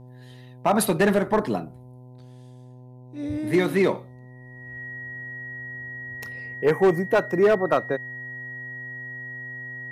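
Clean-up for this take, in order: clip repair -12.5 dBFS; de-hum 125.6 Hz, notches 8; band-stop 1.9 kHz, Q 30

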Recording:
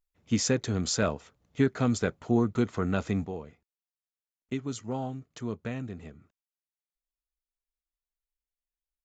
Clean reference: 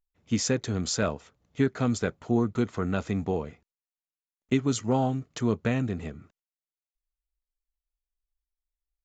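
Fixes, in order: trim 0 dB, from 3.26 s +8.5 dB

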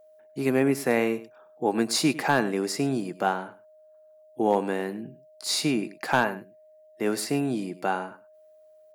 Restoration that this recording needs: clip repair -11.5 dBFS; band-stop 620 Hz, Q 30; inverse comb 102 ms -16.5 dB

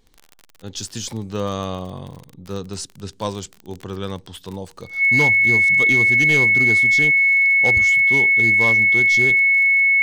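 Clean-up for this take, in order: clip repair -10 dBFS; de-click; band-stop 2.2 kHz, Q 30

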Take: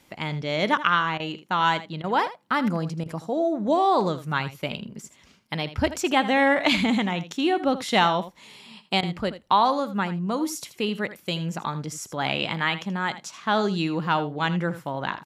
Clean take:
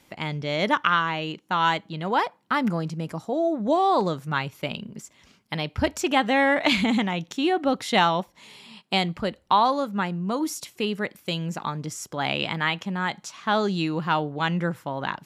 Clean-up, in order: interpolate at 1.18/2.02/3.04/9.01 s, 17 ms; inverse comb 80 ms -14 dB

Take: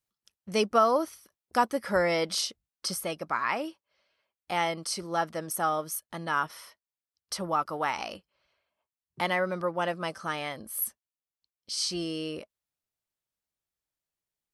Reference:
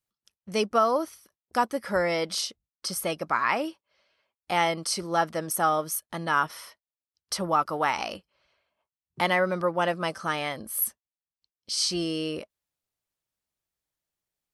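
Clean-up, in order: gain correction +4 dB, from 2.96 s

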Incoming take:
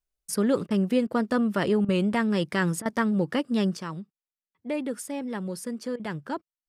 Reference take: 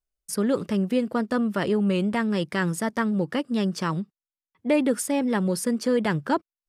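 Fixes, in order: interpolate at 0.67/1.07/1.85/2.82/5.96 s, 34 ms; gain correction +8.5 dB, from 3.77 s

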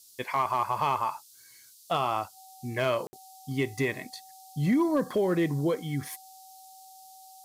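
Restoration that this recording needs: clip repair -18 dBFS; band-stop 760 Hz, Q 30; room tone fill 3.07–3.13 s; noise print and reduce 20 dB

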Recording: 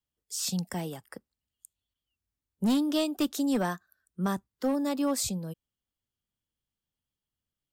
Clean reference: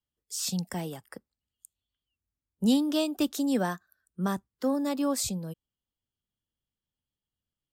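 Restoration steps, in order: clip repair -21.5 dBFS; interpolate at 1.94 s, 12 ms

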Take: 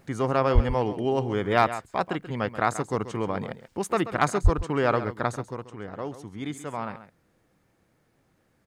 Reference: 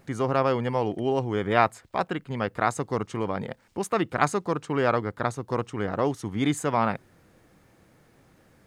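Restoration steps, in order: clip repair -8 dBFS; 0.54–0.66 s: high-pass 140 Hz 24 dB/octave; 4.43–4.55 s: high-pass 140 Hz 24 dB/octave; inverse comb 134 ms -13 dB; 5.49 s: gain correction +9 dB

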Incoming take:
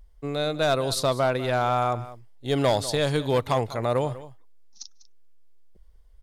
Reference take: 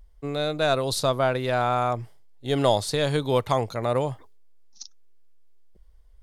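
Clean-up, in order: clip repair -15 dBFS; inverse comb 197 ms -16.5 dB

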